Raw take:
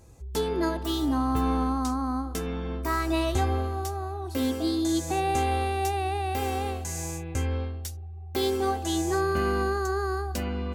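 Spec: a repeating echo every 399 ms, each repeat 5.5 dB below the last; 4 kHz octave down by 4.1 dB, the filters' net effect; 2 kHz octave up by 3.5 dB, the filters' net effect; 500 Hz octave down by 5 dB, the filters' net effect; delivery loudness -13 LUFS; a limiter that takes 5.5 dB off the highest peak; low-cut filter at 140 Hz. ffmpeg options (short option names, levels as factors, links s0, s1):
-af "highpass=140,equalizer=f=500:t=o:g=-7.5,equalizer=f=2000:t=o:g=7,equalizer=f=4000:t=o:g=-7.5,alimiter=limit=0.0794:level=0:latency=1,aecho=1:1:399|798|1197|1596|1995|2394|2793:0.531|0.281|0.149|0.079|0.0419|0.0222|0.0118,volume=7.5"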